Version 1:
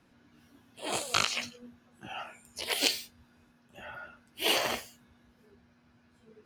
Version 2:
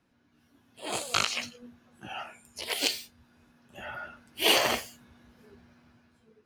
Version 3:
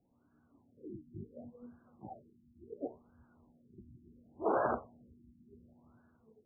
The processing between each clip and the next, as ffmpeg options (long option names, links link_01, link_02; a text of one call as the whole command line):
ffmpeg -i in.wav -af "dynaudnorm=framelen=160:gausssize=9:maxgain=13dB,volume=-6.5dB" out.wav
ffmpeg -i in.wav -af "afftfilt=real='re*lt(b*sr/1024,340*pow(1700/340,0.5+0.5*sin(2*PI*0.7*pts/sr)))':imag='im*lt(b*sr/1024,340*pow(1700/340,0.5+0.5*sin(2*PI*0.7*pts/sr)))':win_size=1024:overlap=0.75,volume=-3dB" out.wav